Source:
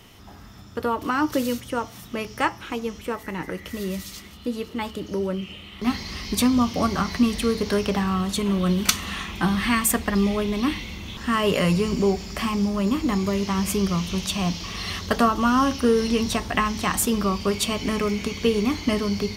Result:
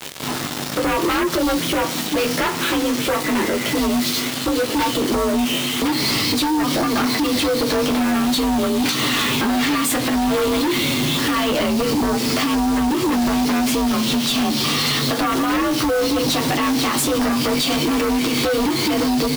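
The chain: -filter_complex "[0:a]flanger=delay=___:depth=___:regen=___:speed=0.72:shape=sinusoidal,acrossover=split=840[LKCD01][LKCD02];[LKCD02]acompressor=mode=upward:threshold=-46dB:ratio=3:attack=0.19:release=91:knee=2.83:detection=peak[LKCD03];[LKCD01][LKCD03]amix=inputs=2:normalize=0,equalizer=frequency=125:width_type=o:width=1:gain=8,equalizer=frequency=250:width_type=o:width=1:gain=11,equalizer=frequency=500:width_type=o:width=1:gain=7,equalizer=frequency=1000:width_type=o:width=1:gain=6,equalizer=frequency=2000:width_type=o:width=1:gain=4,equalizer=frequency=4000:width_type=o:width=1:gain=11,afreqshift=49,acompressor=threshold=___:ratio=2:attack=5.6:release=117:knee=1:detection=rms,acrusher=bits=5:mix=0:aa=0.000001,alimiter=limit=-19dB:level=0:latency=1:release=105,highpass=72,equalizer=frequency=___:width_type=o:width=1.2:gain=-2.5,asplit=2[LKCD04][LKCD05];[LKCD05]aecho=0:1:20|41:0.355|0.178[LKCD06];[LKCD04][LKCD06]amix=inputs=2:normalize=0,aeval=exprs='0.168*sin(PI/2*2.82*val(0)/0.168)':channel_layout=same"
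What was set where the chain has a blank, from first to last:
9.7, 2, -23, -25dB, 200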